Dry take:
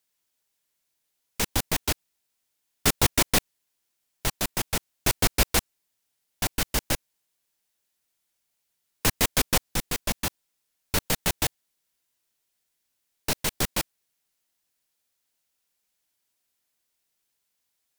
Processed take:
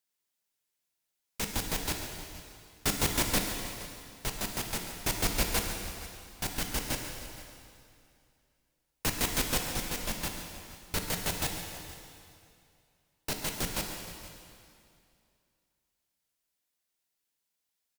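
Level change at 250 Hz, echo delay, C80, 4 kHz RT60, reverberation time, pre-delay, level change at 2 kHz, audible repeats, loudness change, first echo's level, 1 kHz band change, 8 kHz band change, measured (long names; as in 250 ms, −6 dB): −4.5 dB, 137 ms, 4.5 dB, 2.3 s, 2.5 s, 5 ms, −5.5 dB, 2, −6.5 dB, −12.0 dB, −5.5 dB, −5.5 dB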